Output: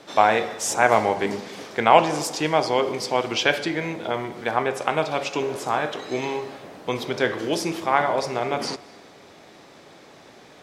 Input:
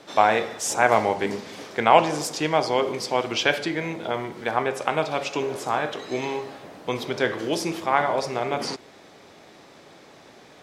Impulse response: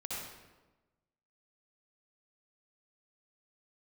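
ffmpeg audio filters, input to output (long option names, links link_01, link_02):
-filter_complex "[0:a]asplit=2[link_01][link_02];[1:a]atrim=start_sample=2205,asetrate=39690,aresample=44100,adelay=130[link_03];[link_02][link_03]afir=irnorm=-1:irlink=0,volume=-23.5dB[link_04];[link_01][link_04]amix=inputs=2:normalize=0,volume=1dB"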